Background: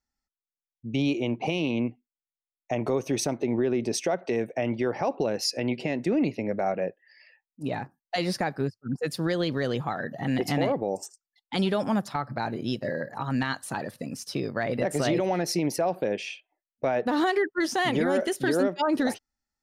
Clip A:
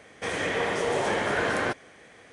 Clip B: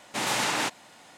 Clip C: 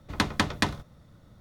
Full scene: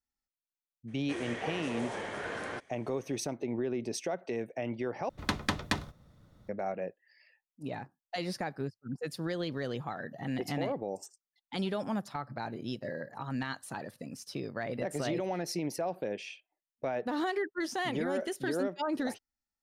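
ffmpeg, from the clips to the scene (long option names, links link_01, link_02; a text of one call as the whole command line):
ffmpeg -i bed.wav -i cue0.wav -i cue1.wav -i cue2.wav -filter_complex "[0:a]volume=-8dB,asplit=2[link_01][link_02];[link_01]atrim=end=5.094[link_03];[3:a]atrim=end=1.4,asetpts=PTS-STARTPTS,volume=-5.5dB[link_04];[link_02]atrim=start=6.486[link_05];[1:a]atrim=end=2.32,asetpts=PTS-STARTPTS,volume=-12dB,afade=type=in:duration=0.02,afade=type=out:start_time=2.3:duration=0.02,adelay=870[link_06];[link_03][link_04]acrossfade=duration=0.004:curve1=hsin:curve2=hsin[link_07];[link_07][link_05]acrossfade=duration=0.004:curve1=hsin:curve2=hsin[link_08];[link_08][link_06]amix=inputs=2:normalize=0" out.wav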